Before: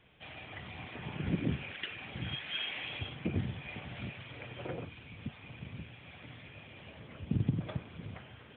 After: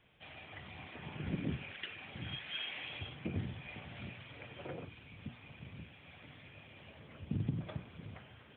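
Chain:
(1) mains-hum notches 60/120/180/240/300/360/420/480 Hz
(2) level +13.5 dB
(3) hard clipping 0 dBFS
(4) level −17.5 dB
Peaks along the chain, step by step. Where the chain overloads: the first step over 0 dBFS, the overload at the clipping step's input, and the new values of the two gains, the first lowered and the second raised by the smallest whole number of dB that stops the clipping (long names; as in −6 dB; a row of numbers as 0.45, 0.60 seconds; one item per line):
−18.5, −5.0, −5.0, −22.5 dBFS
no step passes full scale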